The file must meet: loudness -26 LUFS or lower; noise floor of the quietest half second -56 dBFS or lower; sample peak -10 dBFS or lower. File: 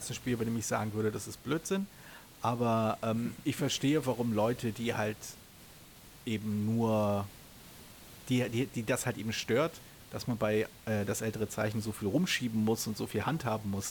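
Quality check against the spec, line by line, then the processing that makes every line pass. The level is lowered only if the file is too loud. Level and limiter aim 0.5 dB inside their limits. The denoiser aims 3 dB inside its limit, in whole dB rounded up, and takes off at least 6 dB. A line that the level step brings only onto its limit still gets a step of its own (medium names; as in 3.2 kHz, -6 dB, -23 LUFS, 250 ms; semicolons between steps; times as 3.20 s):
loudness -33.0 LUFS: pass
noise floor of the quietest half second -54 dBFS: fail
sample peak -18.5 dBFS: pass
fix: noise reduction 6 dB, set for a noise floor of -54 dBFS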